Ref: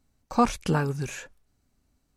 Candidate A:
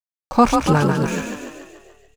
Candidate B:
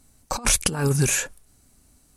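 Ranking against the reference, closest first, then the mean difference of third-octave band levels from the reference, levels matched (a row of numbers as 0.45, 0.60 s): A, B; 6.0, 9.0 dB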